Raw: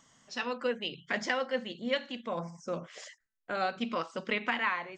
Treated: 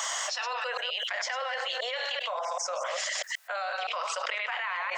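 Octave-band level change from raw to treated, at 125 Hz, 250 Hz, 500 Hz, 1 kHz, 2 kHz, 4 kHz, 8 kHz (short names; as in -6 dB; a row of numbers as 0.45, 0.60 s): under -35 dB, under -30 dB, -1.0 dB, +3.5 dB, +3.0 dB, +7.5 dB, +17.0 dB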